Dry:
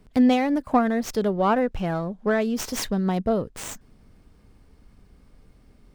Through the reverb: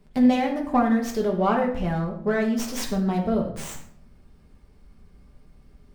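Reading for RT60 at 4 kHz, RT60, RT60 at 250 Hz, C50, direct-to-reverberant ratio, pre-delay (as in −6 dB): 0.45 s, 0.60 s, 0.75 s, 7.5 dB, −1.0 dB, 5 ms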